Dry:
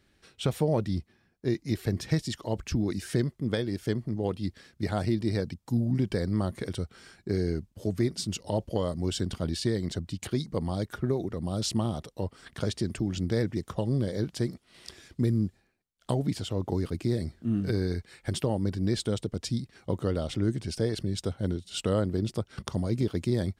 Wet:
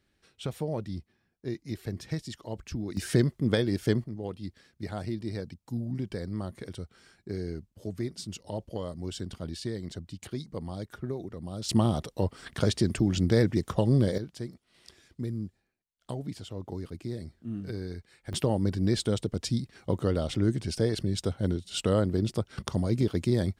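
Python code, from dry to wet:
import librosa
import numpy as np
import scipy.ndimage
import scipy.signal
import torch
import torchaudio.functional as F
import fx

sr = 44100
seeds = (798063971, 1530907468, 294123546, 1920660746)

y = fx.gain(x, sr, db=fx.steps((0.0, -6.5), (2.97, 3.5), (4.04, -6.5), (11.69, 4.5), (14.18, -8.0), (18.33, 1.5)))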